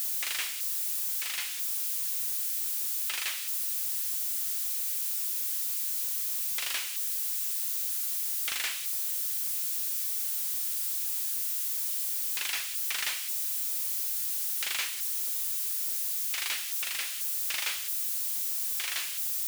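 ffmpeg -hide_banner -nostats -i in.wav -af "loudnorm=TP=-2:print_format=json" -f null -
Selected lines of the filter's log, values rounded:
"input_i" : "-28.9",
"input_tp" : "-19.2",
"input_lra" : "0.6",
"input_thresh" : "-38.9",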